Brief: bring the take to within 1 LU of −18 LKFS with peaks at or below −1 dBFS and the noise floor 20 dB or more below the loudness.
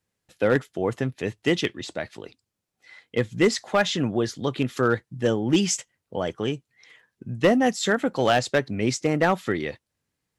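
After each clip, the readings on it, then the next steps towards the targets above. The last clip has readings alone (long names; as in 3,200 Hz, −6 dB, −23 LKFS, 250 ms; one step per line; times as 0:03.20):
share of clipped samples 0.2%; peaks flattened at −11.5 dBFS; integrated loudness −24.5 LKFS; sample peak −11.5 dBFS; target loudness −18.0 LKFS
→ clipped peaks rebuilt −11.5 dBFS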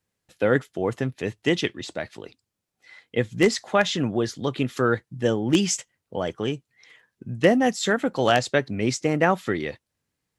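share of clipped samples 0.0%; integrated loudness −24.0 LKFS; sample peak −2.5 dBFS; target loudness −18.0 LKFS
→ level +6 dB
brickwall limiter −1 dBFS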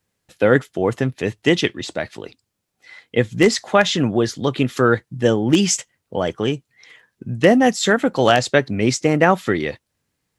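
integrated loudness −18.5 LKFS; sample peak −1.0 dBFS; background noise floor −76 dBFS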